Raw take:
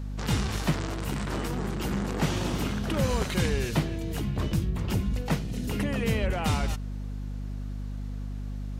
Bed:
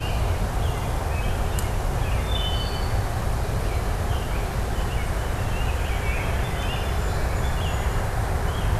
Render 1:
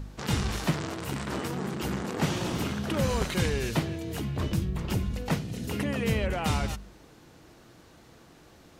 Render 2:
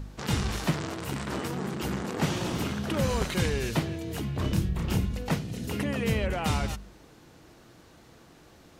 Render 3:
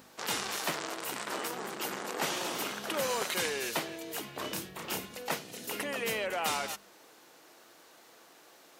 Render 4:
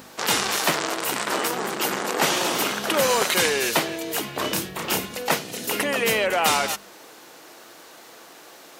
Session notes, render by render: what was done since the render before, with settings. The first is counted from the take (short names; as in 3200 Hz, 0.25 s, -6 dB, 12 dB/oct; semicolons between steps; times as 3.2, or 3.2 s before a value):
de-hum 50 Hz, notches 5
4.41–5.06 doubler 31 ms -3.5 dB
HPF 490 Hz 12 dB/oct; high shelf 11000 Hz +10.5 dB
gain +11.5 dB